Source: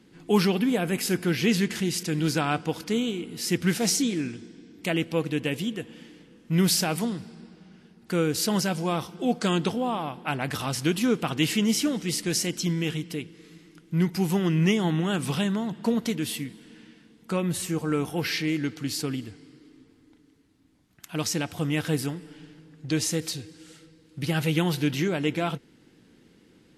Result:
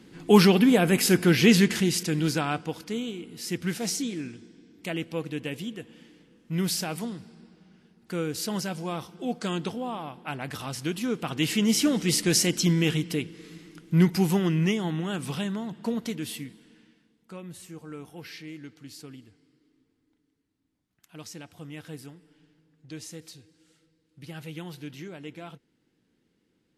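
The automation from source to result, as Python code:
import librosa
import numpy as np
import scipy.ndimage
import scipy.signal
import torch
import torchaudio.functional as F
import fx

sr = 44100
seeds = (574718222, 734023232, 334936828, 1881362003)

y = fx.gain(x, sr, db=fx.line((1.59, 5.0), (2.87, -5.5), (11.08, -5.5), (12.02, 4.0), (14.04, 4.0), (14.84, -4.5), (16.49, -4.5), (17.32, -14.5)))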